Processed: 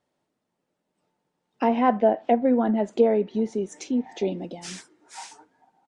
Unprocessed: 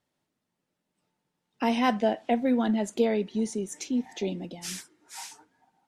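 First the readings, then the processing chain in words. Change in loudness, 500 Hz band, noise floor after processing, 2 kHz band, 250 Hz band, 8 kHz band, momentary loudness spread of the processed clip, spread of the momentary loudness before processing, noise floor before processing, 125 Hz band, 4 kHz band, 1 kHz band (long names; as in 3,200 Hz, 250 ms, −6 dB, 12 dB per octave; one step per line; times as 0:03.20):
+4.5 dB, +6.0 dB, −80 dBFS, −1.5 dB, +2.5 dB, −3.5 dB, 18 LU, 16 LU, −83 dBFS, can't be measured, −4.5 dB, +5.0 dB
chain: treble cut that deepens with the level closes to 1,700 Hz, closed at −21 dBFS
parametric band 560 Hz +8 dB 2.5 octaves
downsampling to 22,050 Hz
level −1.5 dB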